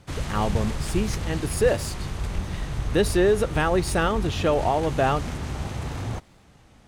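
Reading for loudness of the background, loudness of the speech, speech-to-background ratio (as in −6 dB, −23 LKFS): −31.5 LKFS, −24.5 LKFS, 7.0 dB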